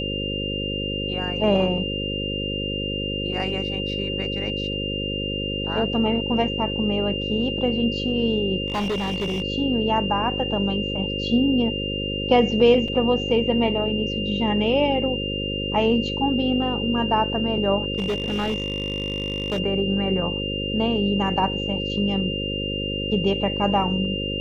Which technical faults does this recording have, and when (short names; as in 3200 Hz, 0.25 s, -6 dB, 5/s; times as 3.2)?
buzz 50 Hz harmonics 11 -29 dBFS
tone 2800 Hz -28 dBFS
8.68–9.42 clipped -21.5 dBFS
12.88 gap 3.8 ms
17.98–19.6 clipped -20 dBFS